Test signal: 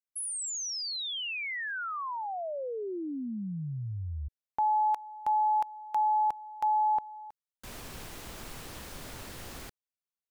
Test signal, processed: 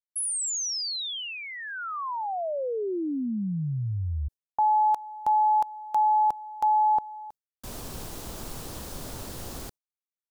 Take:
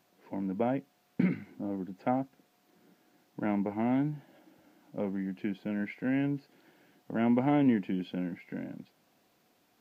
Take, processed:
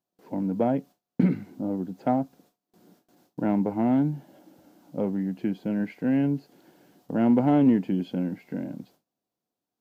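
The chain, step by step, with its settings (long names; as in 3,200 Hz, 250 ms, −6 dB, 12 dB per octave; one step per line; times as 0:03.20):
noise gate with hold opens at −55 dBFS, closes at −63 dBFS, hold 19 ms, range −24 dB
parametric band 2,100 Hz −9.5 dB 1.4 octaves
in parallel at −11 dB: hard clipping −23.5 dBFS
on the sum: level +4.5 dB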